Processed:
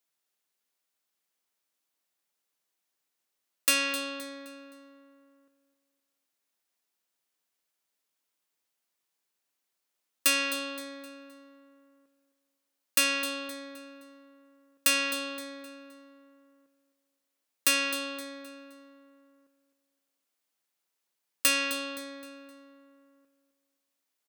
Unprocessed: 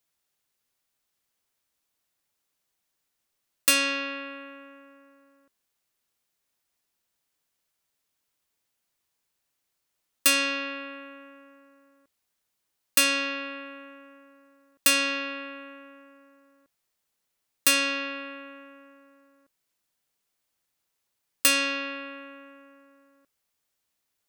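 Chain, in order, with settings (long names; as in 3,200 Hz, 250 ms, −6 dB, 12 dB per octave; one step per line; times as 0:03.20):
high-pass filter 200 Hz
on a send: repeating echo 260 ms, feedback 37%, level −12.5 dB
on the sum: level −3.5 dB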